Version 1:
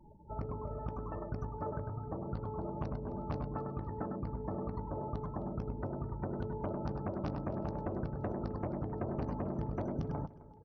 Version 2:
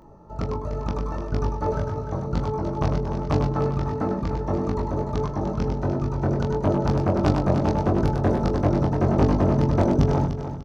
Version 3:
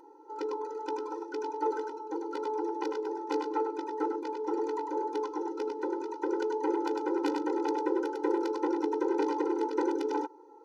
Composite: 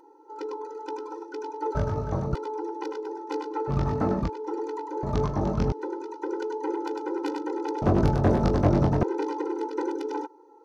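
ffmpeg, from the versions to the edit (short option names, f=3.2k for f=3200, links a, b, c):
-filter_complex "[1:a]asplit=4[a][b][c][d];[2:a]asplit=5[e][f][g][h][i];[e]atrim=end=1.752[j];[a]atrim=start=1.748:end=2.352[k];[f]atrim=start=2.348:end=3.71[l];[b]atrim=start=3.67:end=4.3[m];[g]atrim=start=4.26:end=5.032[n];[c]atrim=start=5.028:end=5.722[o];[h]atrim=start=5.718:end=7.822[p];[d]atrim=start=7.818:end=9.032[q];[i]atrim=start=9.028[r];[j][k]acrossfade=d=0.004:c1=hsin:c2=hsin[s];[s][l]acrossfade=d=0.004:c1=hsin:c2=hsin[t];[t][m]acrossfade=d=0.04:c1=tri:c2=tri[u];[u][n]acrossfade=d=0.04:c1=tri:c2=tri[v];[v][o]acrossfade=d=0.004:c1=hsin:c2=hsin[w];[w][p]acrossfade=d=0.004:c1=hsin:c2=hsin[x];[x][q]acrossfade=d=0.004:c1=hsin:c2=hsin[y];[y][r]acrossfade=d=0.004:c1=hsin:c2=hsin"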